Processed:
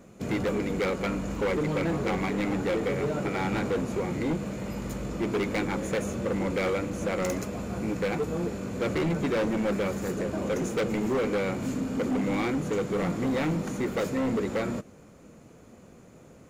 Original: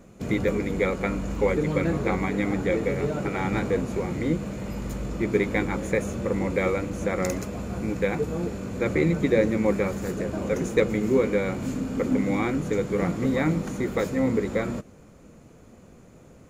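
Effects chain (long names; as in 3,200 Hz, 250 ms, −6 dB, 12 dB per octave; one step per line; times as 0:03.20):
low-shelf EQ 68 Hz −10 dB
hard clipping −23.5 dBFS, distortion −9 dB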